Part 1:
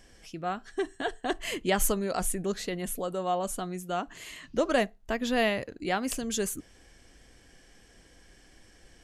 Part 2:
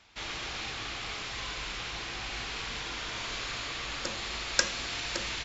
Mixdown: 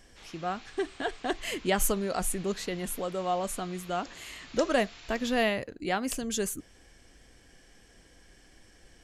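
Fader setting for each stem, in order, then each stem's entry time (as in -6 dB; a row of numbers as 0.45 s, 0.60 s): -0.5 dB, -14.5 dB; 0.00 s, 0.00 s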